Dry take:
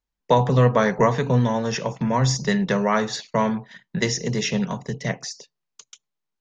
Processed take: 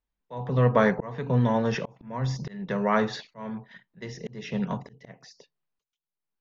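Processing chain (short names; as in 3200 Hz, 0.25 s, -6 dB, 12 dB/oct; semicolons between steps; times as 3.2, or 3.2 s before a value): auto swell 0.554 s; air absorption 210 m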